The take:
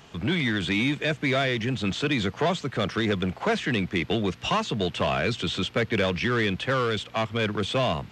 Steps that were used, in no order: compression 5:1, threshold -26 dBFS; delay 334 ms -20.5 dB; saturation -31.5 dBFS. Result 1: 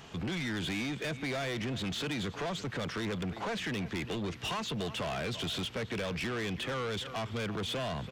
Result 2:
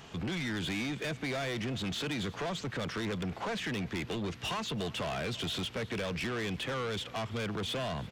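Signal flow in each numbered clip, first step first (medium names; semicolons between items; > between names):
delay > compression > saturation; compression > saturation > delay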